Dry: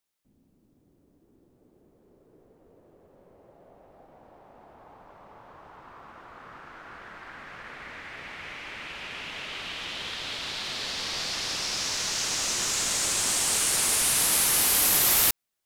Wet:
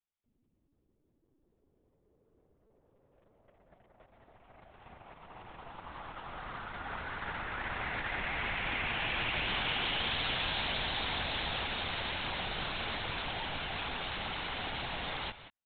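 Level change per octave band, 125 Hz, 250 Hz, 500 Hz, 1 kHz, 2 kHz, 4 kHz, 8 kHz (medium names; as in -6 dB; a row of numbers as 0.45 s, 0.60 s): +2.5 dB, -2.0 dB, -2.0 dB, -0.5 dB, -1.0 dB, -6.5 dB, under -40 dB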